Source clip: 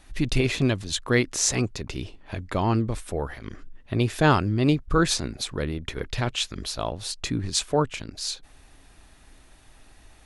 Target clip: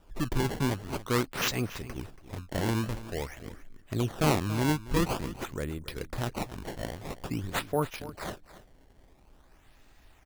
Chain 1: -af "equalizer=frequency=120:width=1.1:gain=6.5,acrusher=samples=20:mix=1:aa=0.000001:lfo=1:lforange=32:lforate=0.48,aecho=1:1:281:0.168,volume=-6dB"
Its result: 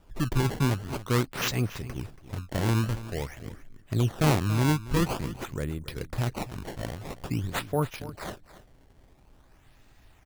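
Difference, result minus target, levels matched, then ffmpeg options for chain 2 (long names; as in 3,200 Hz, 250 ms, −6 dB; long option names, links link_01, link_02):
125 Hz band +3.0 dB
-af "acrusher=samples=20:mix=1:aa=0.000001:lfo=1:lforange=32:lforate=0.48,aecho=1:1:281:0.168,volume=-6dB"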